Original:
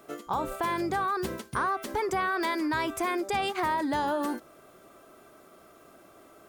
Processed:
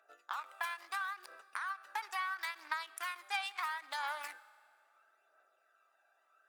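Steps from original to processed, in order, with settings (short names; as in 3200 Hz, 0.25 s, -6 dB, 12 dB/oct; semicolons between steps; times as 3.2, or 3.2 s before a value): Wiener smoothing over 41 samples; HPF 1100 Hz 24 dB/oct; compressor, threshold -40 dBFS, peak gain reduction 10.5 dB; phaser 0.74 Hz, delay 1.3 ms, feedback 43%; reverb RT60 2.3 s, pre-delay 3 ms, DRR 16.5 dB; ending taper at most 290 dB/s; gain +4 dB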